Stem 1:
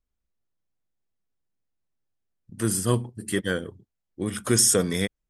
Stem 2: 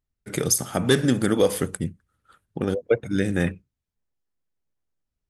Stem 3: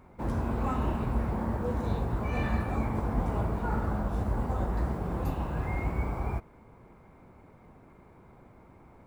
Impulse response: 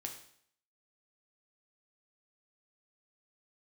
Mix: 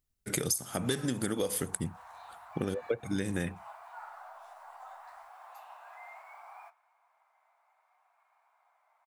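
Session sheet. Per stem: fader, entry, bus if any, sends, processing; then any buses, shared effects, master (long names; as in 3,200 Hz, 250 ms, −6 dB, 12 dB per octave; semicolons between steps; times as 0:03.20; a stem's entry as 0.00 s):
muted
−1.5 dB, 0.00 s, no send, high-shelf EQ 4,700 Hz +10 dB
−4.5 dB, 0.30 s, no send, Chebyshev high-pass filter 690 Hz, order 5; pitch vibrato 0.66 Hz 32 cents; flanger 0.39 Hz, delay 6.6 ms, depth 6.3 ms, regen −57%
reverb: not used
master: downward compressor 8 to 1, threshold −28 dBFS, peak gain reduction 17.5 dB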